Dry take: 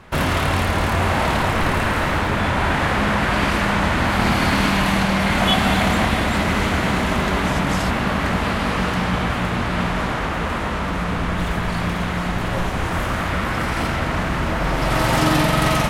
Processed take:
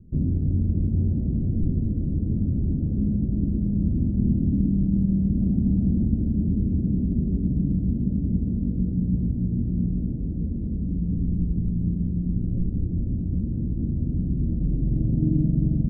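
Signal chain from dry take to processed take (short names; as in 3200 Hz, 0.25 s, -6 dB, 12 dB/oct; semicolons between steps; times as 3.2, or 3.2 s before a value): inverse Chebyshev low-pass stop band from 950 Hz, stop band 60 dB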